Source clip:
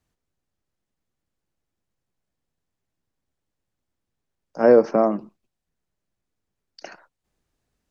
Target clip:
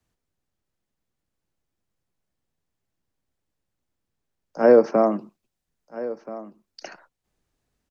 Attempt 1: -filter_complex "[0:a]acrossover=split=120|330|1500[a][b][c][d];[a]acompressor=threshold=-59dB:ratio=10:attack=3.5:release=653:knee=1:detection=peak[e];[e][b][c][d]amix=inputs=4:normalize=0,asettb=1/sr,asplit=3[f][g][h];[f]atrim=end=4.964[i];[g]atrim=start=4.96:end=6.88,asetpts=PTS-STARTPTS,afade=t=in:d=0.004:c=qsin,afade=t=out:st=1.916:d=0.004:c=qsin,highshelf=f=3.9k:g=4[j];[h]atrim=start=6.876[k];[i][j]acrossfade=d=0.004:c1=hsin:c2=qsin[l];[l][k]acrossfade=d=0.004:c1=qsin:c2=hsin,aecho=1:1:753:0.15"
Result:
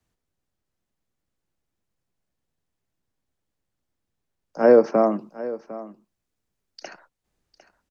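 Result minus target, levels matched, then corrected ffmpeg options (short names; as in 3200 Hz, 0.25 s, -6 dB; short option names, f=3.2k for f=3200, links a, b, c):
echo 0.576 s early
-filter_complex "[0:a]acrossover=split=120|330|1500[a][b][c][d];[a]acompressor=threshold=-59dB:ratio=10:attack=3.5:release=653:knee=1:detection=peak[e];[e][b][c][d]amix=inputs=4:normalize=0,asettb=1/sr,asplit=3[f][g][h];[f]atrim=end=4.964[i];[g]atrim=start=4.96:end=6.88,asetpts=PTS-STARTPTS,afade=t=in:d=0.004:c=qsin,afade=t=out:st=1.916:d=0.004:c=qsin,highshelf=f=3.9k:g=4[j];[h]atrim=start=6.876[k];[i][j]acrossfade=d=0.004:c1=hsin:c2=qsin[l];[l][k]acrossfade=d=0.004:c1=qsin:c2=hsin,aecho=1:1:1329:0.15"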